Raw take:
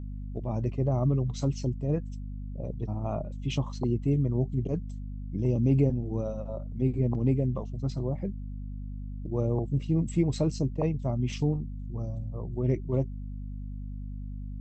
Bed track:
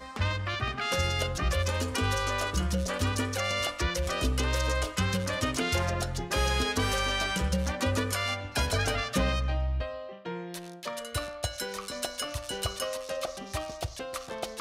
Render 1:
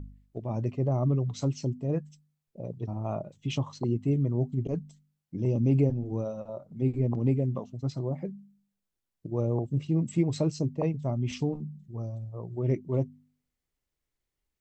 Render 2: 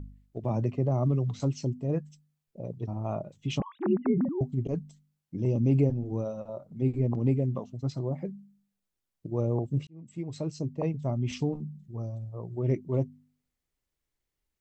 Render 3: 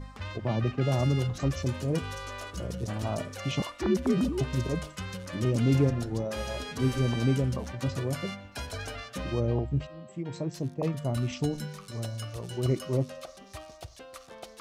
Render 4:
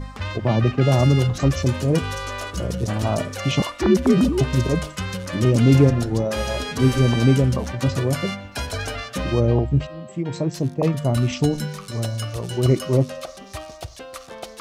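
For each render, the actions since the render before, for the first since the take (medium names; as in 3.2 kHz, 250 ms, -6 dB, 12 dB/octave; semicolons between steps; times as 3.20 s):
de-hum 50 Hz, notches 5
0.44–1.40 s: three bands compressed up and down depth 70%; 3.60–4.41 s: formants replaced by sine waves; 9.87–11.04 s: fade in
add bed track -9.5 dB
trim +9.5 dB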